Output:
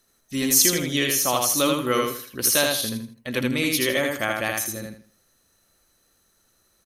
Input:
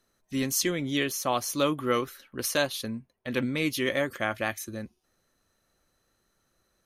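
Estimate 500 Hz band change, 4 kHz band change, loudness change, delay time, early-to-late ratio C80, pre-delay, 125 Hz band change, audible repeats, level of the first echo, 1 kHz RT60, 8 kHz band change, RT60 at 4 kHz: +4.0 dB, +8.5 dB, +7.5 dB, 80 ms, no reverb, no reverb, +3.5 dB, 3, -3.0 dB, no reverb, +11.5 dB, no reverb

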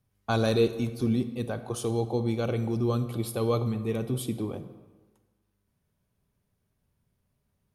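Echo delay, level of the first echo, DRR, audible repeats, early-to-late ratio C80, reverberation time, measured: no echo, no echo, 10.5 dB, no echo, 13.5 dB, 1.3 s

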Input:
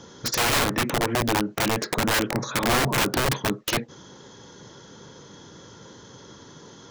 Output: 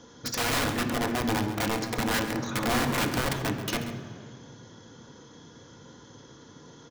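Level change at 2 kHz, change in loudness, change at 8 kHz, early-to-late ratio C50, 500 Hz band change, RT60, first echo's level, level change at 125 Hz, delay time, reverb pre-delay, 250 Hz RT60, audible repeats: -4.5 dB, -4.5 dB, -6.0 dB, 7.0 dB, -4.5 dB, 2.0 s, -12.0 dB, -3.0 dB, 135 ms, 3 ms, 2.7 s, 1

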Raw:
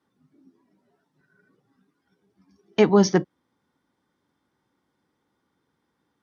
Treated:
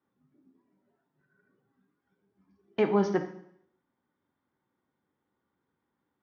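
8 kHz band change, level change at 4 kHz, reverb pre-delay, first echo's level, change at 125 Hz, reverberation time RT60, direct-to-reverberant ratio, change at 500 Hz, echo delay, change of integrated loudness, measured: no reading, -14.0 dB, 4 ms, no echo, -10.0 dB, 0.70 s, 5.5 dB, -7.5 dB, no echo, -8.0 dB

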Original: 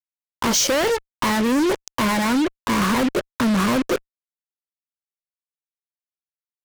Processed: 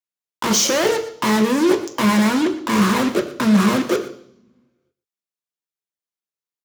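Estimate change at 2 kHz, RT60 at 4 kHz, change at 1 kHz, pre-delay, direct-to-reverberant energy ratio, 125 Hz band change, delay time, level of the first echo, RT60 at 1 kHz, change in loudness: +1.0 dB, 0.75 s, +1.0 dB, 3 ms, 3.5 dB, +4.5 dB, 120 ms, -15.5 dB, 0.60 s, +2.5 dB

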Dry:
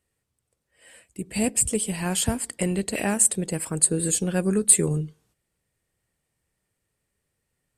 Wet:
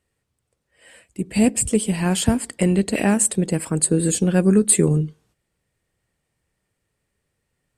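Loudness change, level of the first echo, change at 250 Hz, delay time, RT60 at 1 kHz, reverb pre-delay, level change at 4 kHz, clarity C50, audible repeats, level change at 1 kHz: +3.5 dB, no echo, +8.0 dB, no echo, no reverb, no reverb, +3.0 dB, no reverb, no echo, +4.5 dB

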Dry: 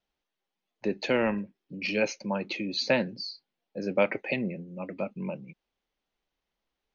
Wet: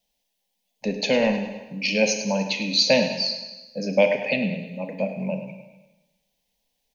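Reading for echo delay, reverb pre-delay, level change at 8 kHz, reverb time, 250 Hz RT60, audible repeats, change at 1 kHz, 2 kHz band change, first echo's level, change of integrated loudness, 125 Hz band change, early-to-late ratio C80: 103 ms, 27 ms, no reading, 1.1 s, 1.1 s, 4, +4.0 dB, +5.5 dB, -13.0 dB, +7.0 dB, +6.0 dB, 8.0 dB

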